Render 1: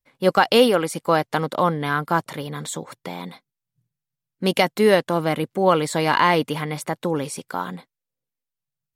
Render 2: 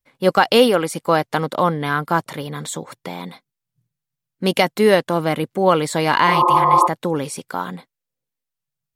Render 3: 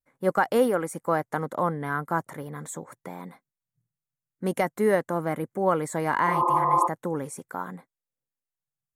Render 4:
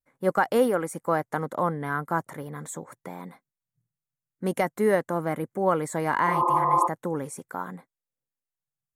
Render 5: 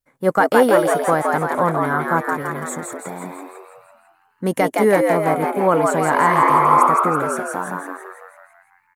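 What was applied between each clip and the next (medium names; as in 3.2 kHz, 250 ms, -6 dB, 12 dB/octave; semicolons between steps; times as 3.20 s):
spectral replace 6.30–6.84 s, 240–1300 Hz before; trim +2 dB
high-order bell 3.6 kHz -14.5 dB 1.3 oct; vibrato 0.41 Hz 19 cents; trim -8 dB
no audible change
frequency-shifting echo 166 ms, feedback 56%, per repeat +100 Hz, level -3 dB; trim +6.5 dB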